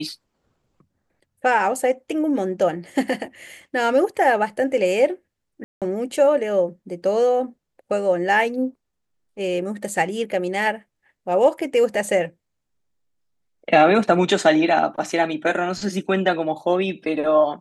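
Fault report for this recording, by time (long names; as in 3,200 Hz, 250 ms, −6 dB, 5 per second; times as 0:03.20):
0:05.64–0:05.82: drop-out 177 ms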